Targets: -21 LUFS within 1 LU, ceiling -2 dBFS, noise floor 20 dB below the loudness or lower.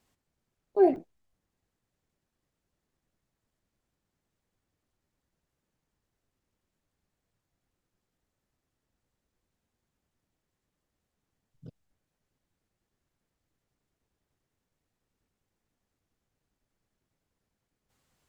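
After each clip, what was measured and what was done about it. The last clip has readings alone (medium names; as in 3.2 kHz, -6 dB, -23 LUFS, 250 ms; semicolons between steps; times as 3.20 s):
dropouts 1; longest dropout 1.4 ms; loudness -26.5 LUFS; peak level -11.0 dBFS; loudness target -21.0 LUFS
-> interpolate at 0.96 s, 1.4 ms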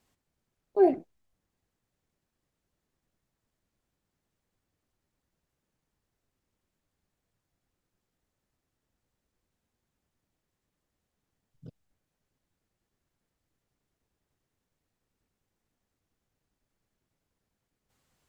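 dropouts 0; loudness -26.5 LUFS; peak level -11.0 dBFS; loudness target -21.0 LUFS
-> trim +5.5 dB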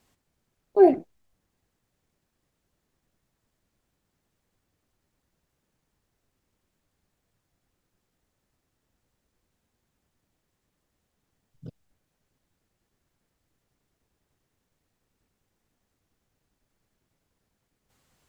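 loudness -21.0 LUFS; peak level -5.5 dBFS; noise floor -79 dBFS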